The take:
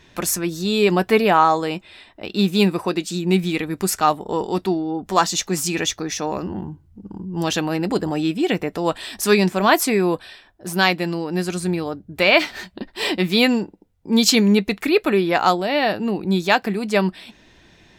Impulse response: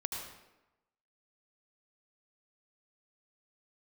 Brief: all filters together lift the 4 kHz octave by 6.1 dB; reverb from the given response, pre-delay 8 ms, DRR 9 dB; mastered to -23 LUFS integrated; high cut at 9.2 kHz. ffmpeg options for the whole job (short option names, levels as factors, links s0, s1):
-filter_complex "[0:a]lowpass=9200,equalizer=f=4000:t=o:g=7.5,asplit=2[s0][s1];[1:a]atrim=start_sample=2205,adelay=8[s2];[s1][s2]afir=irnorm=-1:irlink=0,volume=0.282[s3];[s0][s3]amix=inputs=2:normalize=0,volume=0.562"